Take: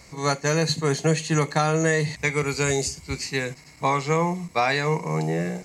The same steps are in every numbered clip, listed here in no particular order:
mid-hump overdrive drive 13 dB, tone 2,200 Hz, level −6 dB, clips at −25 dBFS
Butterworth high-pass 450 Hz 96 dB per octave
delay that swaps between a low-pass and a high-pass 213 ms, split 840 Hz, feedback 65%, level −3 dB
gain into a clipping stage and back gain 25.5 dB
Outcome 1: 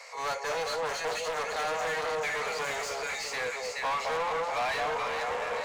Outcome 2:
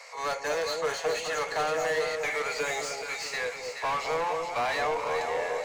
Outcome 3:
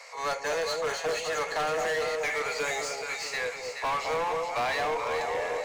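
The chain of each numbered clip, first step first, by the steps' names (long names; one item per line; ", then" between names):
delay that swaps between a low-pass and a high-pass, then gain into a clipping stage and back, then Butterworth high-pass, then mid-hump overdrive
Butterworth high-pass, then gain into a clipping stage and back, then mid-hump overdrive, then delay that swaps between a low-pass and a high-pass
Butterworth high-pass, then mid-hump overdrive, then delay that swaps between a low-pass and a high-pass, then gain into a clipping stage and back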